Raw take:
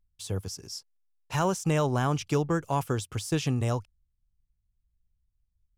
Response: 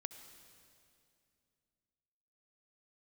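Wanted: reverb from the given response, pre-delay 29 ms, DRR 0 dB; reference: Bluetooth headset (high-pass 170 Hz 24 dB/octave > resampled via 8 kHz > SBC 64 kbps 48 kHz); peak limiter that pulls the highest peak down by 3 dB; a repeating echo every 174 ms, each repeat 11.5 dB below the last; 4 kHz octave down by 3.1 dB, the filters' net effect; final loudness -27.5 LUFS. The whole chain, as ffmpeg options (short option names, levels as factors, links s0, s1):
-filter_complex "[0:a]equalizer=f=4000:t=o:g=-4.5,alimiter=limit=0.133:level=0:latency=1,aecho=1:1:174|348|522:0.266|0.0718|0.0194,asplit=2[s0][s1];[1:a]atrim=start_sample=2205,adelay=29[s2];[s1][s2]afir=irnorm=-1:irlink=0,volume=1.5[s3];[s0][s3]amix=inputs=2:normalize=0,highpass=f=170:w=0.5412,highpass=f=170:w=1.3066,aresample=8000,aresample=44100,volume=1.26" -ar 48000 -c:a sbc -b:a 64k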